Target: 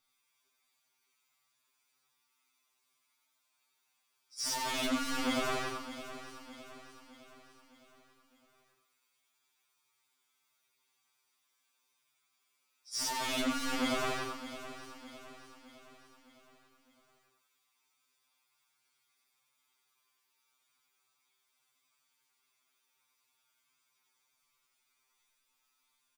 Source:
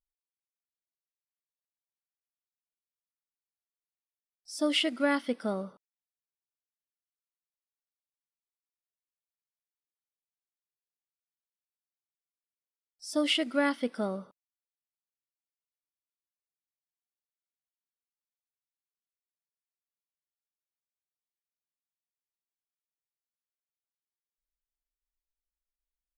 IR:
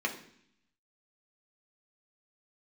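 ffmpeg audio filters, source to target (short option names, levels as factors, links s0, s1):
-filter_complex "[0:a]afftfilt=real='re':imag='-im':win_size=8192:overlap=0.75,acrossover=split=7800[s0][s1];[s1]acompressor=threshold=0.00141:ratio=4:attack=1:release=60[s2];[s0][s2]amix=inputs=2:normalize=0,aecho=1:1:6.9:0.59,acrossover=split=1500[s3][s4];[s4]acompressor=threshold=0.00501:ratio=16[s5];[s3][s5]amix=inputs=2:normalize=0,asplit=2[s6][s7];[s7]highpass=f=720:p=1,volume=35.5,asoftclip=type=tanh:threshold=0.106[s8];[s6][s8]amix=inputs=2:normalize=0,lowpass=f=5000:p=1,volume=0.501,aeval=exprs='val(0)+0.000631*sin(2*PI*420*n/s)':c=same,asoftclip=type=hard:threshold=0.0251,asplit=2[s9][s10];[s10]aecho=0:1:611|1222|1833|2444|3055:0.224|0.112|0.056|0.028|0.014[s11];[s9][s11]amix=inputs=2:normalize=0,afftfilt=real='re*2.45*eq(mod(b,6),0)':imag='im*2.45*eq(mod(b,6),0)':win_size=2048:overlap=0.75,volume=1.5"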